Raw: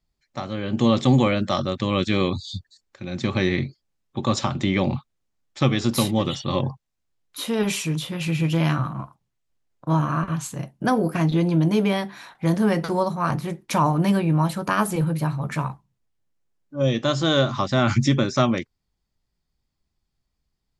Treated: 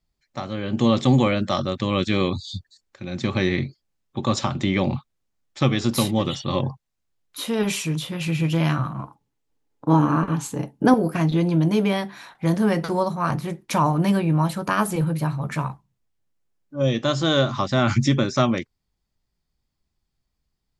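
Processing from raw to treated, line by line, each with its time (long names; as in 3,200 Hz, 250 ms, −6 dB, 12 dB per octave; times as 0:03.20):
0:09.03–0:10.94: hollow resonant body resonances 290/440/840 Hz, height 12 dB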